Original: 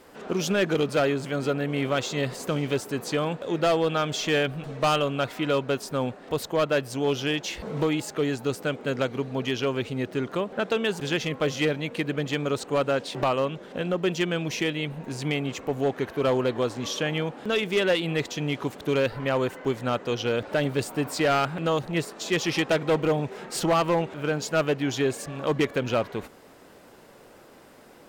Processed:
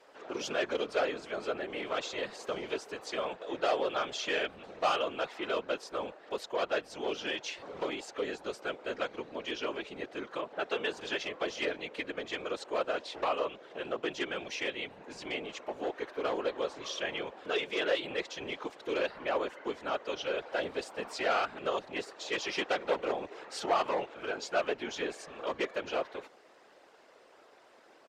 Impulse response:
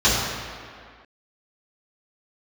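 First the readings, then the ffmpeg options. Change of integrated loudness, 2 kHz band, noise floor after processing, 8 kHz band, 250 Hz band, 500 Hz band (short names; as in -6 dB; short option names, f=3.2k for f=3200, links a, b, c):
-8.5 dB, -6.0 dB, -59 dBFS, -10.5 dB, -14.0 dB, -8.0 dB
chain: -filter_complex "[0:a]afftfilt=real='hypot(re,im)*cos(2*PI*random(0))':imag='hypot(re,im)*sin(2*PI*random(1))':win_size=512:overlap=0.75,aresample=32000,aresample=44100,acrossover=split=350 7000:gain=0.1 1 0.112[a][b][c];[a][b][c]amix=inputs=3:normalize=0"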